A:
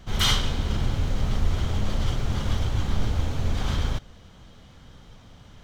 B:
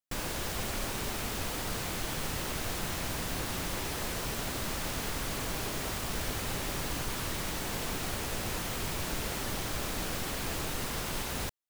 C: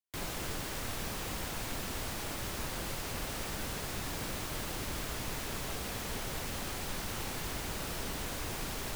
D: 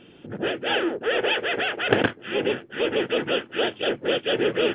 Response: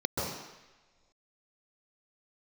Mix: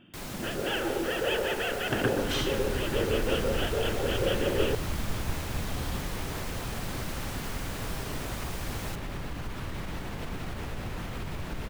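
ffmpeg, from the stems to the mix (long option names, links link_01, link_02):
-filter_complex "[0:a]adelay=2100,volume=-11dB[link_01];[1:a]bass=frequency=250:gain=6,treble=frequency=4000:gain=-12,alimiter=level_in=2dB:limit=-24dB:level=0:latency=1:release=72,volume=-2dB,adelay=2400,volume=-0.5dB[link_02];[2:a]volume=-1.5dB[link_03];[3:a]acontrast=32,volume=-11.5dB,asplit=2[link_04][link_05];[link_05]volume=-12.5dB[link_06];[4:a]atrim=start_sample=2205[link_07];[link_06][link_07]afir=irnorm=-1:irlink=0[link_08];[link_01][link_02][link_03][link_04][link_08]amix=inputs=5:normalize=0"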